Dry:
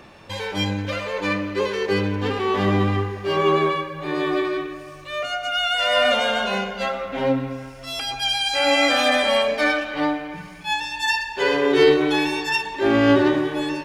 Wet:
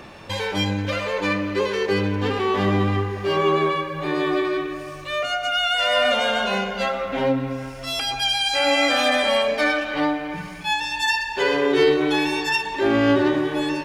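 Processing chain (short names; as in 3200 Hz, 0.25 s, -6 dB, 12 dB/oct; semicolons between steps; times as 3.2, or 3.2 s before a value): compressor 1.5:1, threshold -30 dBFS, peak gain reduction 7 dB; gain +4.5 dB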